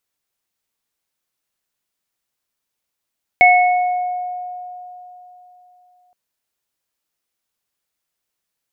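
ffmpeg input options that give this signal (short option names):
-f lavfi -i "aevalsrc='0.398*pow(10,-3*t/3.49)*sin(2*PI*723*t)+0.447*pow(10,-3*t/1.09)*sin(2*PI*2200*t)':d=2.72:s=44100"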